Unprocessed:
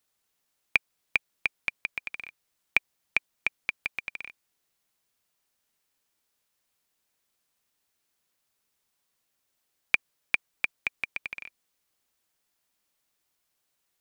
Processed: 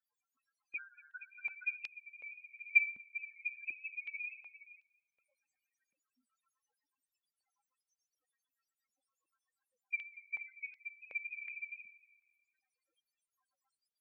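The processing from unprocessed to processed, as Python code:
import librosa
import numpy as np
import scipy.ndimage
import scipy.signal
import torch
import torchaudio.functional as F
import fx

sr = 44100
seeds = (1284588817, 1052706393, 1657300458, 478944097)

p1 = fx.dynamic_eq(x, sr, hz=3300.0, q=2.3, threshold_db=-45.0, ratio=4.0, max_db=-8)
p2 = fx.over_compress(p1, sr, threshold_db=-29.0, ratio=-0.5)
p3 = p1 + (p2 * librosa.db_to_amplitude(-1.5))
p4 = fx.whisperise(p3, sr, seeds[0])
p5 = fx.rev_double_slope(p4, sr, seeds[1], early_s=0.5, late_s=2.1, knee_db=-18, drr_db=9.0)
p6 = fx.env_flanger(p5, sr, rest_ms=3.9, full_db=-28.5)
p7 = fx.harmonic_tremolo(p6, sr, hz=7.9, depth_pct=70, crossover_hz=2300.0)
p8 = fx.sample_hold(p7, sr, seeds[2], rate_hz=3900.0, jitter_pct=0, at=(0.76, 1.31), fade=0.02)
p9 = fx.spec_topn(p8, sr, count=2)
p10 = p9 + fx.echo_stepped(p9, sr, ms=235, hz=1400.0, octaves=0.7, feedback_pct=70, wet_db=-10.5, dry=0)
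p11 = fx.filter_held_highpass(p10, sr, hz=2.7, low_hz=220.0, high_hz=4800.0)
y = p11 * librosa.db_to_amplitude(3.5)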